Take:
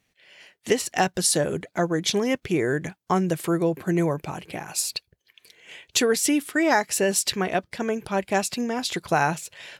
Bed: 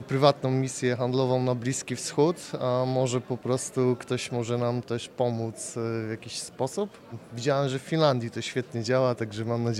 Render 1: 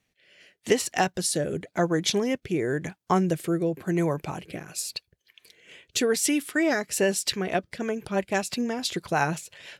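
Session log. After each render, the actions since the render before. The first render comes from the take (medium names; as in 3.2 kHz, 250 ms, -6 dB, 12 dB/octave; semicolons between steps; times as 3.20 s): rotary cabinet horn 0.9 Hz, later 6 Hz, at 6.65 s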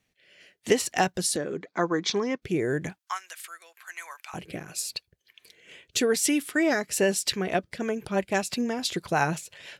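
1.36–2.42 s: cabinet simulation 240–5900 Hz, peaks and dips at 610 Hz -7 dB, 1.1 kHz +8 dB, 2.9 kHz -7 dB; 2.99–4.34 s: high-pass 1.2 kHz 24 dB/octave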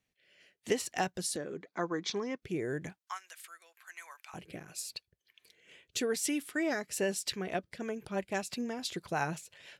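trim -8.5 dB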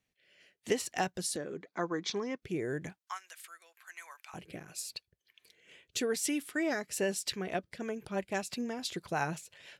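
no audible change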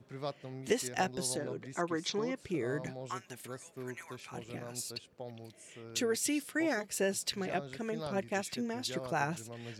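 add bed -19 dB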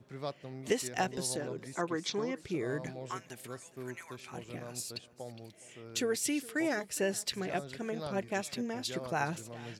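delay 414 ms -20 dB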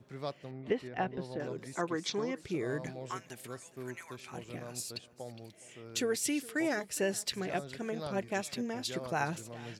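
0.51–1.40 s: distance through air 410 m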